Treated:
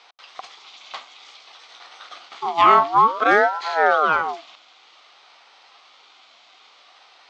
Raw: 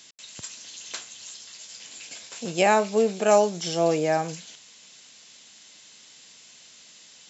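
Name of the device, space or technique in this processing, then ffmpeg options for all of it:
voice changer toy: -af "aeval=exprs='val(0)*sin(2*PI*820*n/s+820*0.45/0.55*sin(2*PI*0.55*n/s))':c=same,highpass=480,equalizer=f=760:t=q:w=4:g=8,equalizer=f=1.2k:t=q:w=4:g=7,equalizer=f=1.7k:t=q:w=4:g=-7,equalizer=f=2.7k:t=q:w=4:g=-4,lowpass=f=3.7k:w=0.5412,lowpass=f=3.7k:w=1.3066,volume=8dB"

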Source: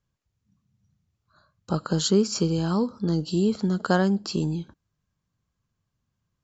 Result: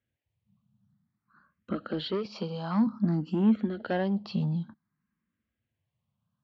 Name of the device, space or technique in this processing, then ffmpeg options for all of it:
barber-pole phaser into a guitar amplifier: -filter_complex "[0:a]asettb=1/sr,asplit=3[a][b][c];[a]atrim=end=2.254[d];[b]atrim=start=2.25:end=2.87,asetpts=PTS-STARTPTS,afade=t=in:d=0.004:c=qsin,afade=t=out:st=0.616:d=0.004:c=qsin,highpass=f=220:w=0.5412,highpass=f=220:w=1.3066[e];[c]atrim=start=2.866[f];[d][e]acrossfade=d=0.004:c1=hsin:c2=qsin[g];[g][f]acrossfade=d=0.004:c1=qsin:c2=hsin,asplit=2[h][i];[i]afreqshift=0.54[j];[h][j]amix=inputs=2:normalize=1,asoftclip=type=tanh:threshold=-22dB,highpass=97,equalizer=f=220:t=q:w=4:g=9,equalizer=f=420:t=q:w=4:g=-6,equalizer=f=1.9k:t=q:w=4:g=4,lowpass=f=3.4k:w=0.5412,lowpass=f=3.4k:w=1.3066"

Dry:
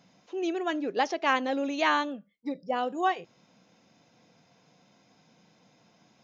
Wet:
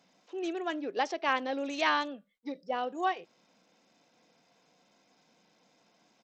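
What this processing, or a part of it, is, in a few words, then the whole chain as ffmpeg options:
Bluetooth headset: -filter_complex "[0:a]asettb=1/sr,asplit=3[a][b][c];[a]atrim=end=1.654[d];[b]atrim=start=1.65:end=2.76,asetpts=PTS-STARTPTS,afade=t=in:d=0.004:c=qsin,afade=t=out:st=1.106:d=0.004:c=qsin,highshelf=f=2.6k:g=4.5[e];[c]atrim=start=2.756[f];[d][e]acrossfade=d=0.004:c1=hsin:c2=qsin[g];[g][f]acrossfade=d=0.004:c1=qsin:c2=hsin,highpass=250,aresample=16000,aresample=44100,volume=-3.5dB" -ar 32000 -c:a sbc -b:a 64k

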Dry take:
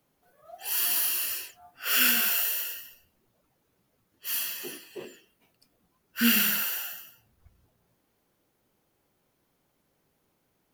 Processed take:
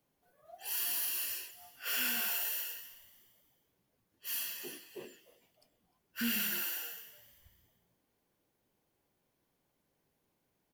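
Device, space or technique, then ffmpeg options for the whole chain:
soft clipper into limiter: -filter_complex "[0:a]bandreject=f=1.3k:w=11,asoftclip=type=tanh:threshold=-15dB,alimiter=limit=-19.5dB:level=0:latency=1,asettb=1/sr,asplit=3[a][b][c];[a]atrim=end=1.924[d];[b]atrim=start=1.92:end=2.51,asetpts=PTS-STARTPTS,afade=t=in:d=0.004:c=qsin,afade=t=out:st=0.586:d=0.004:c=qsin,equalizer=f=850:w=1.9:g=6[e];[c]atrim=start=2.506[f];[d][e]acrossfade=d=0.004:c1=hsin:c2=qsin[g];[g][f]acrossfade=d=0.004:c1=qsin:c2=hsin,asplit=4[h][i][j][k];[i]adelay=304,afreqshift=120,volume=-19dB[l];[j]adelay=608,afreqshift=240,volume=-27.6dB[m];[k]adelay=912,afreqshift=360,volume=-36.3dB[n];[h][l][m][n]amix=inputs=4:normalize=0,volume=-6.5dB"

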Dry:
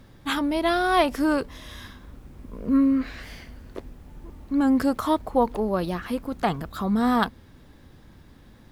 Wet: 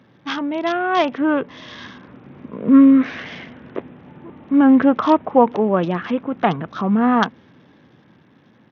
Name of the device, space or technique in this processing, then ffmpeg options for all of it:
Bluetooth headset: -af "highpass=f=130:w=0.5412,highpass=f=130:w=1.3066,dynaudnorm=f=460:g=7:m=11.5dB,aresample=8000,aresample=44100,volume=1dB" -ar 48000 -c:a sbc -b:a 64k

